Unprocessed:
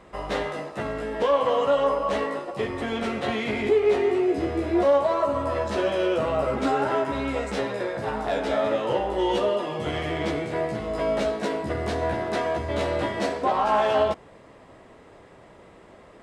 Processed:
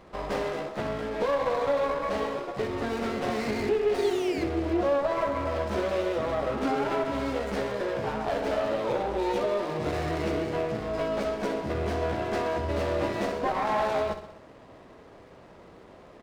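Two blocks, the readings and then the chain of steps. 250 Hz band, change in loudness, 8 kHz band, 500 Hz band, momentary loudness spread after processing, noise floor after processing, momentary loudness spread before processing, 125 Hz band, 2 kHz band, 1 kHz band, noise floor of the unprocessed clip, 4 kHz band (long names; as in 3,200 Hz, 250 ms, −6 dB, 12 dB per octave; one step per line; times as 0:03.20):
−2.5 dB, −3.5 dB, can't be measured, −4.0 dB, 5 LU, −51 dBFS, 8 LU, −1.0 dB, −3.5 dB, −4.0 dB, −50 dBFS, −4.5 dB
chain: Chebyshev low-pass filter 5,900 Hz, order 2
downward compressor 2 to 1, threshold −26 dBFS, peak gain reduction 5.5 dB
sound drawn into the spectrogram fall, 0:03.94–0:04.44, 2,000–4,700 Hz −37 dBFS
repeating echo 64 ms, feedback 57%, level −10 dB
windowed peak hold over 9 samples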